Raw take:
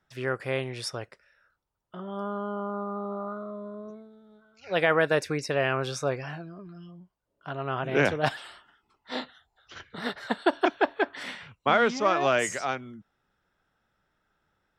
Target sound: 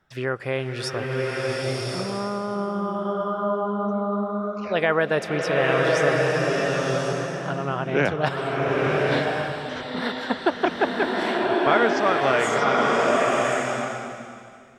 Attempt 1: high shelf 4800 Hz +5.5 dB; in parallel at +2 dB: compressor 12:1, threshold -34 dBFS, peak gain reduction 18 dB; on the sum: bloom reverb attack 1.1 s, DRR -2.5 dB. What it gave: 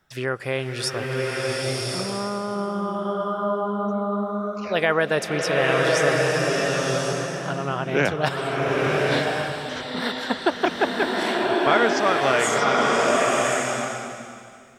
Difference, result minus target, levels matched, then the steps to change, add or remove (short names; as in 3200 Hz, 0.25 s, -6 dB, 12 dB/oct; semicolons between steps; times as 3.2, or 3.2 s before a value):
8000 Hz band +6.5 dB
change: high shelf 4800 Hz -6 dB